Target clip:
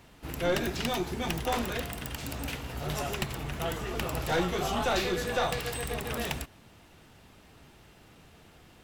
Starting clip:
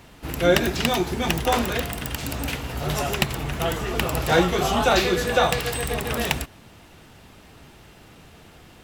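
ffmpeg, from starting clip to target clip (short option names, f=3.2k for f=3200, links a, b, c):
-af "aeval=exprs='(tanh(5.01*val(0)+0.3)-tanh(0.3))/5.01':c=same,volume=-6.5dB"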